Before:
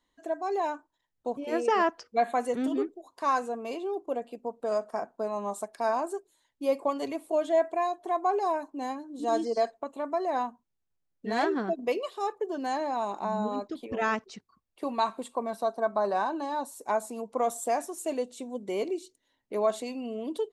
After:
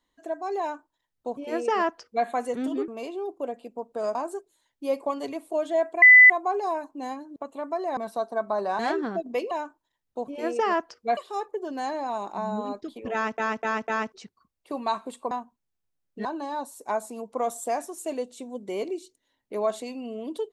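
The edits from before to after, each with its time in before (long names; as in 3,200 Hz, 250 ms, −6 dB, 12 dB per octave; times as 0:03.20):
0:00.60–0:02.26: duplicate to 0:12.04
0:02.88–0:03.56: remove
0:04.83–0:05.94: remove
0:07.81–0:08.09: beep over 2,000 Hz −8 dBFS
0:09.15–0:09.77: remove
0:10.38–0:11.32: swap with 0:15.43–0:16.25
0:14.00–0:14.25: repeat, 4 plays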